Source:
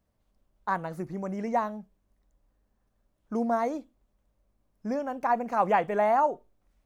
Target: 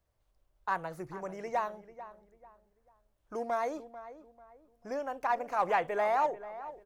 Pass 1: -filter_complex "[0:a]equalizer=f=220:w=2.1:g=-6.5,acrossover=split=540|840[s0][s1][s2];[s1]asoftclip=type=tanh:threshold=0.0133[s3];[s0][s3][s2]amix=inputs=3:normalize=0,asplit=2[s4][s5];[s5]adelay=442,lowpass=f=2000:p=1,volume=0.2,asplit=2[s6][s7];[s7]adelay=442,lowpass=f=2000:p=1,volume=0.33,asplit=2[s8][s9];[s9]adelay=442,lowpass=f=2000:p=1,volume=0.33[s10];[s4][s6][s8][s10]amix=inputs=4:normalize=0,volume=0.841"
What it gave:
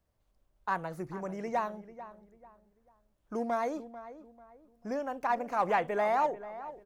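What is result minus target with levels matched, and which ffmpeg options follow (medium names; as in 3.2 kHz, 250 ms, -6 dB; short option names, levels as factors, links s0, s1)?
250 Hz band +5.5 dB
-filter_complex "[0:a]equalizer=f=220:w=2.1:g=-16,acrossover=split=540|840[s0][s1][s2];[s1]asoftclip=type=tanh:threshold=0.0133[s3];[s0][s3][s2]amix=inputs=3:normalize=0,asplit=2[s4][s5];[s5]adelay=442,lowpass=f=2000:p=1,volume=0.2,asplit=2[s6][s7];[s7]adelay=442,lowpass=f=2000:p=1,volume=0.33,asplit=2[s8][s9];[s9]adelay=442,lowpass=f=2000:p=1,volume=0.33[s10];[s4][s6][s8][s10]amix=inputs=4:normalize=0,volume=0.841"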